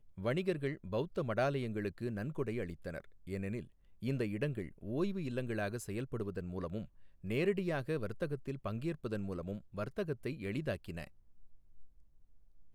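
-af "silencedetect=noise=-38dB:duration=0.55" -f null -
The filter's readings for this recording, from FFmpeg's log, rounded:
silence_start: 11.04
silence_end: 12.74 | silence_duration: 1.70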